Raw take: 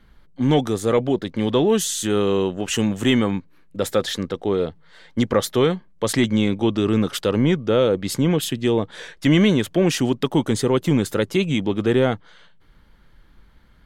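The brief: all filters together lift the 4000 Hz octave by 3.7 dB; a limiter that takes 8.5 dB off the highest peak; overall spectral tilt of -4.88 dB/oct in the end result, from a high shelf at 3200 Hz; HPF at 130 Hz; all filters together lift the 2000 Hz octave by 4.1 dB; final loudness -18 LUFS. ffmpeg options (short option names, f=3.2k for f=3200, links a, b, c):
-af "highpass=130,equalizer=f=2k:t=o:g=5,highshelf=f=3.2k:g=-6,equalizer=f=4k:t=o:g=7,volume=5dB,alimiter=limit=-6.5dB:level=0:latency=1"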